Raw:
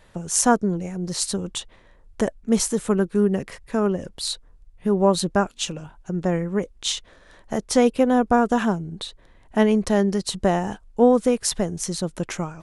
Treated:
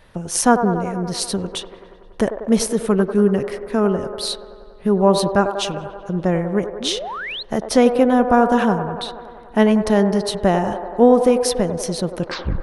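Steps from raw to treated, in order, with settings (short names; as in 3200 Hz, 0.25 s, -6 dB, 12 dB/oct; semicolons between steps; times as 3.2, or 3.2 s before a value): tape stop at the end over 0.40 s; bell 7300 Hz -10.5 dB 0.35 oct; band-limited delay 95 ms, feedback 74%, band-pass 720 Hz, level -7.5 dB; painted sound rise, 6.8–7.43, 210–4400 Hz -32 dBFS; gain +3.5 dB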